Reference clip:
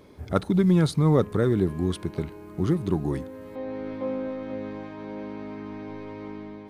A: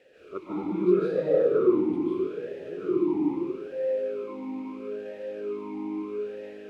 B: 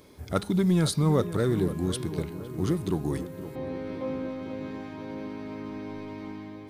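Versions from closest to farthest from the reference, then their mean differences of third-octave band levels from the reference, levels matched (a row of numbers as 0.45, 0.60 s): B, A; 4.0, 8.0 dB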